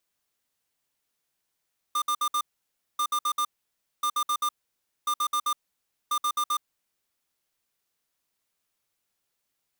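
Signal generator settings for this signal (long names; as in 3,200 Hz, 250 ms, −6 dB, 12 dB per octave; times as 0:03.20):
beeps in groups square 1,200 Hz, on 0.07 s, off 0.06 s, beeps 4, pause 0.58 s, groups 5, −25.5 dBFS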